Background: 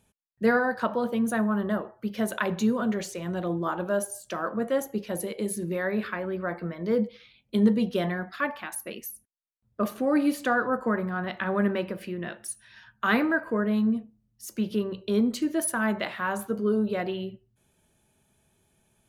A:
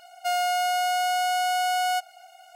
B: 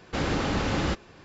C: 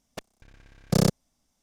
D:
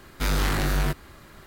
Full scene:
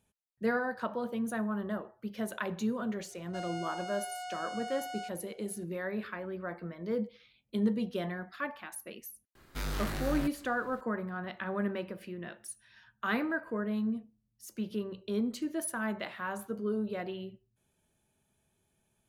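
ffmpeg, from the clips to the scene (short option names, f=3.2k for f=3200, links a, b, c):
-filter_complex "[0:a]volume=-8dB[a];[1:a]lowpass=f=8.6k:w=0.5412,lowpass=f=8.6k:w=1.3066,atrim=end=2.55,asetpts=PTS-STARTPTS,volume=-16.5dB,afade=t=in:d=0.004:c=hsin,afade=t=out:st=2.546:d=0.004:c=hsin,adelay=136269S[b];[4:a]atrim=end=1.46,asetpts=PTS-STARTPTS,volume=-11.5dB,afade=t=in:d=0.004:c=hsin,afade=t=out:st=1.456:d=0.004:c=hsin,adelay=9350[c];[a][b][c]amix=inputs=3:normalize=0"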